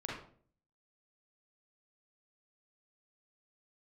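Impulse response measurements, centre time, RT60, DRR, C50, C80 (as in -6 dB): 51 ms, 0.50 s, -4.5 dB, 0.5 dB, 6.5 dB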